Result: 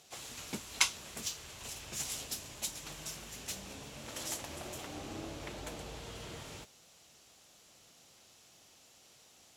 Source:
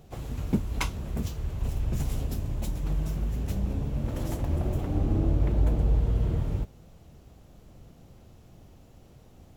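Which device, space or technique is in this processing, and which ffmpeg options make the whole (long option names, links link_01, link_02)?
piezo pickup straight into a mixer: -af "lowpass=7200,aderivative,volume=13dB"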